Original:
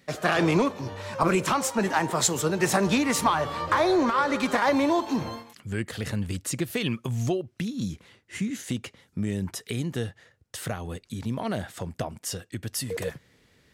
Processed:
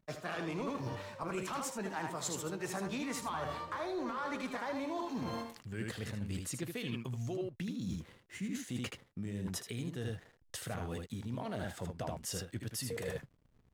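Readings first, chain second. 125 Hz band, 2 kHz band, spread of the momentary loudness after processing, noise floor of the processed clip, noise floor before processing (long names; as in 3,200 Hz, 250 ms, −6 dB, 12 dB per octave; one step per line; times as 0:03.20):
−10.0 dB, −13.5 dB, 5 LU, −68 dBFS, −63 dBFS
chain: slack as between gear wheels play −48 dBFS
ambience of single reflections 16 ms −16 dB, 78 ms −6.5 dB
reversed playback
downward compressor 10 to 1, threshold −34 dBFS, peak gain reduction 17.5 dB
reversed playback
level −1.5 dB
AAC 192 kbit/s 44,100 Hz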